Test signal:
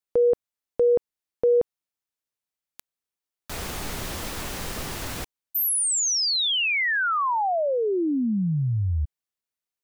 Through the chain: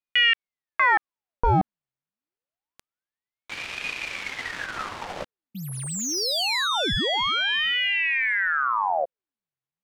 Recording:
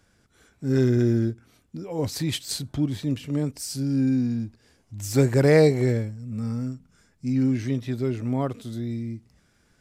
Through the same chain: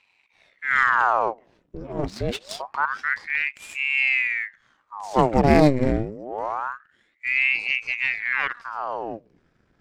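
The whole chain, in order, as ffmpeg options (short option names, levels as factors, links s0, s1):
-af "aeval=exprs='if(lt(val(0),0),0.447*val(0),val(0))':c=same,adynamicsmooth=sensitivity=3.5:basefreq=3200,aeval=exprs='val(0)*sin(2*PI*1300*n/s+1300*0.9/0.26*sin(2*PI*0.26*n/s))':c=same,volume=1.78"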